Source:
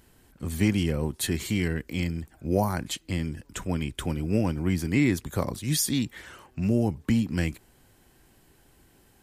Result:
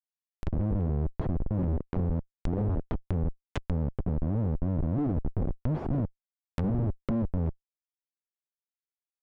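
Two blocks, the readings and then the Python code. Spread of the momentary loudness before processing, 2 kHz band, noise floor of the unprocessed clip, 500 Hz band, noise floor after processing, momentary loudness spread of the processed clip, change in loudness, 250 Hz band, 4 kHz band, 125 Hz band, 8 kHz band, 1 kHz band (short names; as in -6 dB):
10 LU, -17.0 dB, -61 dBFS, -5.0 dB, under -85 dBFS, 5 LU, -3.5 dB, -5.0 dB, under -20 dB, -0.5 dB, under -30 dB, -6.0 dB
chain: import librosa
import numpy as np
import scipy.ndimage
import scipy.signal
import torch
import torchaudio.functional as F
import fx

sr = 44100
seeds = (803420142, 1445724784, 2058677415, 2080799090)

y = fx.schmitt(x, sr, flips_db=-26.5)
y = fx.env_lowpass_down(y, sr, base_hz=550.0, full_db=-29.0)
y = y * librosa.db_to_amplitude(2.5)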